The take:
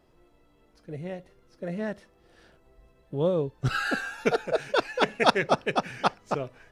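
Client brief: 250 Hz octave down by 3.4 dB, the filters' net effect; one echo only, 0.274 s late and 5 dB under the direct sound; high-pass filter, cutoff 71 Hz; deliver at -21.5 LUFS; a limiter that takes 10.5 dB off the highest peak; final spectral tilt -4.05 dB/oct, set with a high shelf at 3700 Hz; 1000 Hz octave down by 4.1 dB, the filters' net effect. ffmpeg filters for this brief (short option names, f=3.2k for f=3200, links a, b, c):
-af "highpass=71,equalizer=f=250:t=o:g=-4.5,equalizer=f=1k:t=o:g=-5,highshelf=f=3.7k:g=-6.5,alimiter=limit=-18.5dB:level=0:latency=1,aecho=1:1:274:0.562,volume=10.5dB"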